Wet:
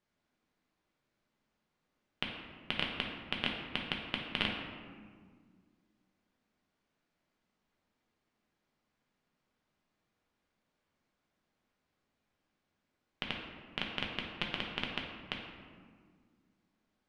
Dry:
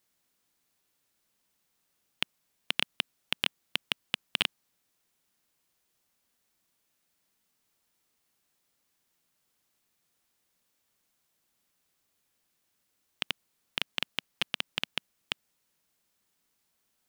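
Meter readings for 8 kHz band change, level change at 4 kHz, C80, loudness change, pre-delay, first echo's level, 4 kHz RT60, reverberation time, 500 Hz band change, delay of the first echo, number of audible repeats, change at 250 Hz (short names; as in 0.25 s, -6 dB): under -15 dB, -5.5 dB, 5.0 dB, -4.5 dB, 5 ms, none, 0.95 s, 1.8 s, +2.5 dB, none, none, +5.0 dB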